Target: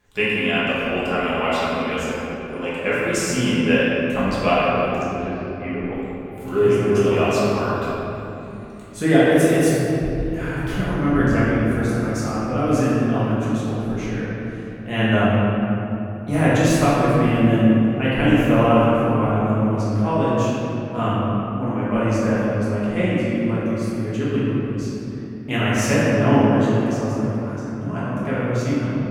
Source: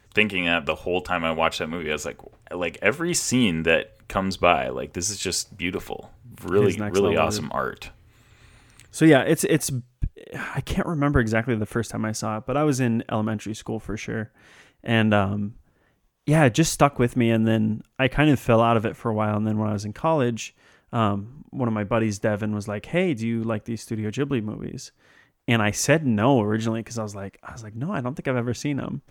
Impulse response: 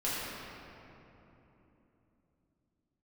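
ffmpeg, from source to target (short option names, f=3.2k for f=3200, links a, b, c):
-filter_complex "[0:a]asettb=1/sr,asplit=3[a][b][c];[a]atrim=end=5.024[d];[b]atrim=start=5.02:end=5.93,asetpts=PTS-STARTPTS,afade=t=in:d=0.004:c=qsin,afade=t=out:st=0.906:d=0.004:c=qsin,lowpass=f=2k:w=0.5412,lowpass=f=2k:w=1.3066[e];[c]atrim=start=5.926[f];[d][e]acrossfade=d=0.004:c1=hsin:c2=qsin[g];[g][f]acrossfade=d=0.004:c1=qsin:c2=hsin[h];[1:a]atrim=start_sample=2205[i];[h][i]afir=irnorm=-1:irlink=0,volume=-5.5dB"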